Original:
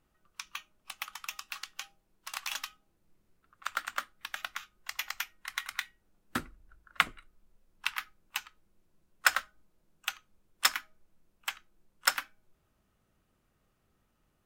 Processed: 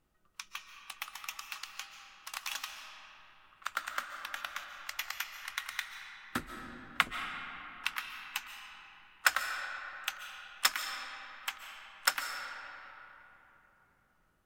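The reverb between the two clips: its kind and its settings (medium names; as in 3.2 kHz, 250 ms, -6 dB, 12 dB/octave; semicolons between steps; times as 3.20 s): algorithmic reverb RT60 3.6 s, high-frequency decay 0.55×, pre-delay 100 ms, DRR 5 dB; trim -2 dB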